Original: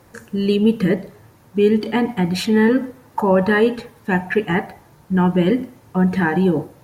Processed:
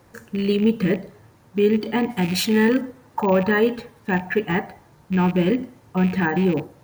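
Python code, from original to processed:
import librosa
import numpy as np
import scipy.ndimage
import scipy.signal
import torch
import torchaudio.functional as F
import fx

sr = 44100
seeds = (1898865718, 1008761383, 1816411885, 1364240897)

y = fx.rattle_buzz(x, sr, strikes_db=-23.0, level_db=-22.0)
y = fx.high_shelf(y, sr, hz=4300.0, db=11.0, at=(2.1, 2.81))
y = np.repeat(scipy.signal.resample_poly(y, 1, 2), 2)[:len(y)]
y = F.gain(torch.from_numpy(y), -3.0).numpy()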